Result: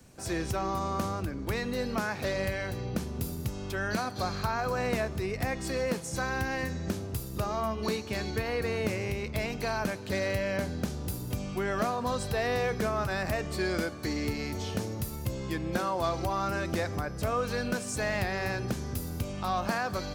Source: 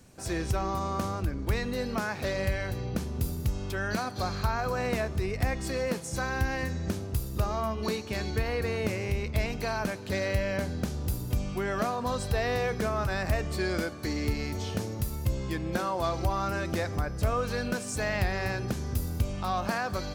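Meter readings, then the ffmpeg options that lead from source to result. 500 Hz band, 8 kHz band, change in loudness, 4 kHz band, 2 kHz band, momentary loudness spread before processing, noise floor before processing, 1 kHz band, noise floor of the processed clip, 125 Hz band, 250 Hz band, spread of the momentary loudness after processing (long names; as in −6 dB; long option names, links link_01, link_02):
0.0 dB, 0.0 dB, −1.0 dB, 0.0 dB, 0.0 dB, 4 LU, −37 dBFS, 0.0 dB, −39 dBFS, −3.5 dB, 0.0 dB, 5 LU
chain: -filter_complex "[0:a]acrossover=split=110|1600|5900[link_01][link_02][link_03][link_04];[link_01]acompressor=threshold=-40dB:ratio=6[link_05];[link_03]volume=31.5dB,asoftclip=hard,volume=-31.5dB[link_06];[link_05][link_02][link_06][link_04]amix=inputs=4:normalize=0"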